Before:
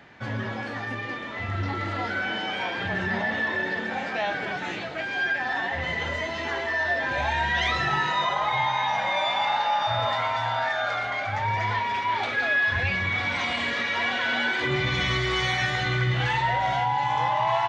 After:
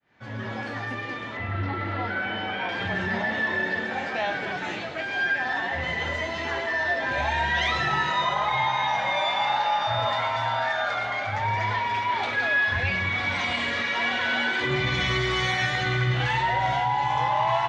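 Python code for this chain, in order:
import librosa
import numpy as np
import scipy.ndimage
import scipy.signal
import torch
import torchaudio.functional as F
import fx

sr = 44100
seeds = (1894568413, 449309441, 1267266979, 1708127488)

y = fx.fade_in_head(x, sr, length_s=0.56)
y = fx.lowpass(y, sr, hz=3100.0, slope=12, at=(1.37, 2.69))
y = fx.echo_split(y, sr, split_hz=840.0, low_ms=455, high_ms=101, feedback_pct=52, wet_db=-14.0)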